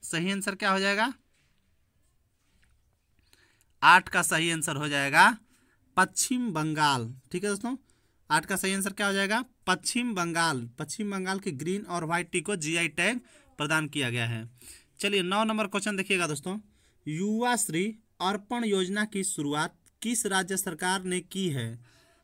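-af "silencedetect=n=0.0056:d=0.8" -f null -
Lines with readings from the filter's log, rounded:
silence_start: 1.14
silence_end: 3.33 | silence_duration: 2.19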